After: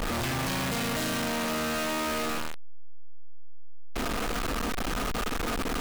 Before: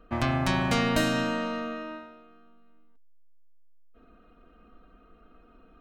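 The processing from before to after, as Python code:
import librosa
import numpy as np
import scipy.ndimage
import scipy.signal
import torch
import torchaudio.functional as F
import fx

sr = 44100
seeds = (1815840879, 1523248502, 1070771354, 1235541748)

y = np.sign(x) * np.sqrt(np.mean(np.square(x)))
y = y * librosa.db_to_amplitude(2.5)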